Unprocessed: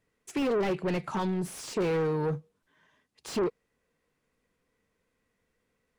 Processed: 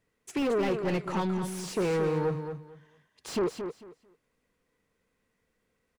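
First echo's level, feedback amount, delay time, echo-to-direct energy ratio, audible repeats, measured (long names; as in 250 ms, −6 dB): −8.0 dB, 21%, 223 ms, −8.0 dB, 2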